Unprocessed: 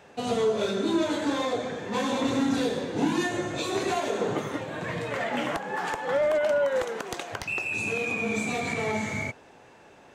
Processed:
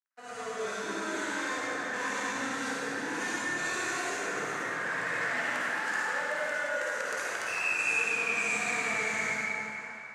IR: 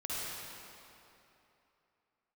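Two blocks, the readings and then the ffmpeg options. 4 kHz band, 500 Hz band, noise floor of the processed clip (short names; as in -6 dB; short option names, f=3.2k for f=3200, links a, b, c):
-4.5 dB, -10.5 dB, -43 dBFS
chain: -filter_complex "[0:a]highpass=f=150:p=1,dynaudnorm=f=160:g=5:m=12dB,aeval=exprs='sgn(val(0))*max(abs(val(0))-0.00668,0)':c=same,highshelf=f=2.4k:t=q:w=3:g=-13.5,acrossover=split=310|3000[a][b][c];[b]acompressor=threshold=-29dB:ratio=6[d];[a][d][c]amix=inputs=3:normalize=0,asoftclip=type=tanh:threshold=-16.5dB,lowpass=7.3k,aderivative[e];[1:a]atrim=start_sample=2205[f];[e][f]afir=irnorm=-1:irlink=0,volume=8.5dB"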